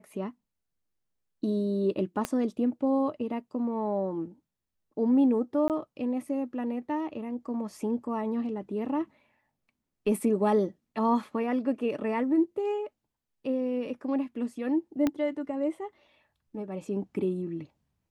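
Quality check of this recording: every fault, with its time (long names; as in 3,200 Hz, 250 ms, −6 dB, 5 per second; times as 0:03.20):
0:02.25: click −14 dBFS
0:05.68–0:05.70: drop-out 18 ms
0:15.07: click −14 dBFS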